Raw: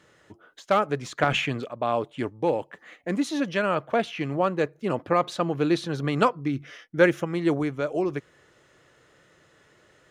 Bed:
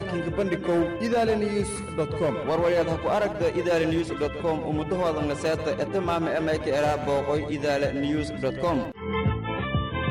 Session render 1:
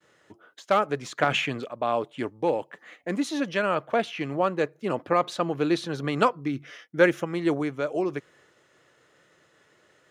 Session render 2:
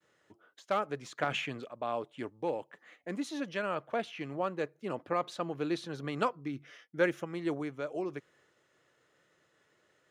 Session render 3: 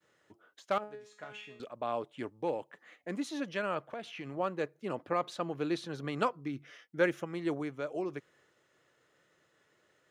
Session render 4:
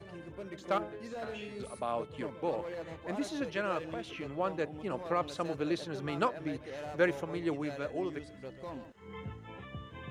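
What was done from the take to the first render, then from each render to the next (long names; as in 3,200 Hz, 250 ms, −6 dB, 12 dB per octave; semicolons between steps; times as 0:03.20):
downward expander −56 dBFS; high-pass filter 180 Hz 6 dB per octave
level −9 dB
0:00.78–0:01.60: tuned comb filter 210 Hz, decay 0.46 s, mix 90%; 0:03.82–0:04.37: downward compressor, threshold −37 dBFS
mix in bed −18.5 dB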